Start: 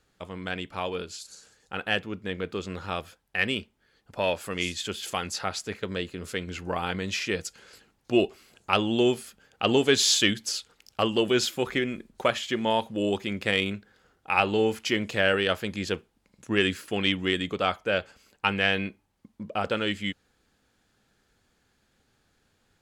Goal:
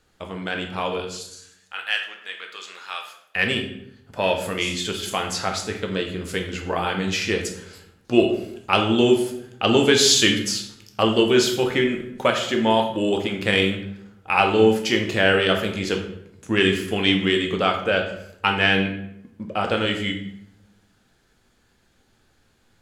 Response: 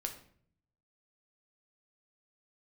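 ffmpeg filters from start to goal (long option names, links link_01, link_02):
-filter_complex "[0:a]asettb=1/sr,asplit=3[link_01][link_02][link_03];[link_01]atrim=end=1.004[link_04];[link_02]atrim=start=1:end=3.36,asetpts=PTS-STARTPTS,afade=type=in:duration=0.004:curve=qsin,afade=type=out:start_time=2.356:duration=0.004:curve=qsin,highpass=1400[link_05];[link_03]atrim=start=3.356[link_06];[link_04][link_05]acrossfade=duration=0.004:curve1=hsin:curve2=qsin[link_07];[link_07][link_06]acrossfade=duration=0.004:curve1=qsin:curve2=hsin[link_08];[1:a]atrim=start_sample=2205,asetrate=31311,aresample=44100[link_09];[link_08][link_09]afir=irnorm=-1:irlink=0,volume=4dB"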